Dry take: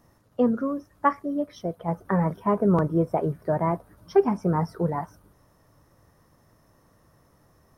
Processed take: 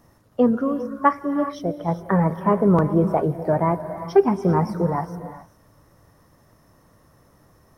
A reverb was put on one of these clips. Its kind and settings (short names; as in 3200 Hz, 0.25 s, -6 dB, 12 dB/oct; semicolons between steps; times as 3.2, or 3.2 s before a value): non-linear reverb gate 0.43 s rising, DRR 10 dB; gain +4 dB